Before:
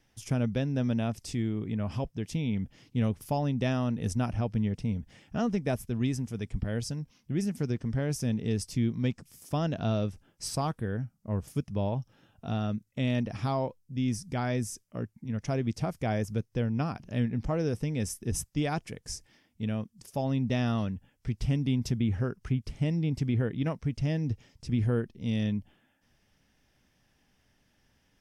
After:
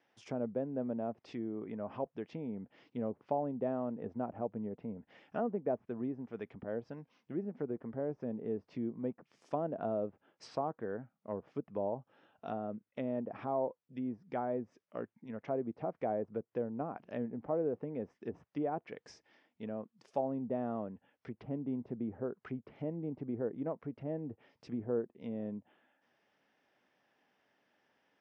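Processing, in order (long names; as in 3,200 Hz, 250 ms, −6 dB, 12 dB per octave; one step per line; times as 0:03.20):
treble cut that deepens with the level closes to 710 Hz, closed at −26 dBFS
high-pass filter 450 Hz 12 dB per octave
head-to-tape spacing loss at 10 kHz 31 dB
level +3.5 dB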